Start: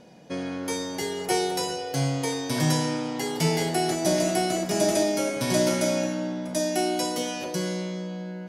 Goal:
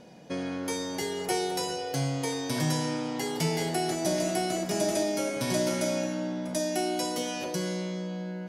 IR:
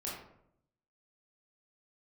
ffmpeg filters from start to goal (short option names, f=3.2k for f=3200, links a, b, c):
-af "acompressor=threshold=-32dB:ratio=1.5"